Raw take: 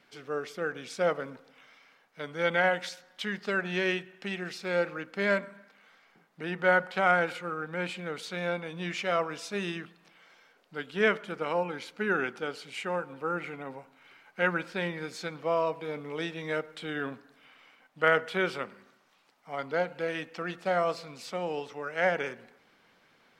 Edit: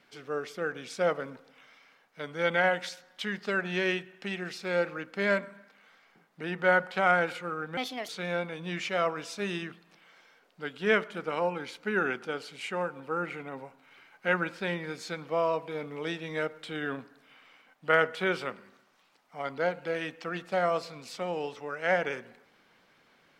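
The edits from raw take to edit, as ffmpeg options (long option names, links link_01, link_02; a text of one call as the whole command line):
ffmpeg -i in.wav -filter_complex "[0:a]asplit=3[link_01][link_02][link_03];[link_01]atrim=end=7.774[link_04];[link_02]atrim=start=7.77:end=8.22,asetpts=PTS-STARTPTS,asetrate=63063,aresample=44100[link_05];[link_03]atrim=start=8.216[link_06];[link_04][link_05]acrossfade=duration=0.004:curve1=hsin:curve2=hsin[link_07];[link_07][link_06]acrossfade=duration=0.004:curve1=hsin:curve2=hsin" out.wav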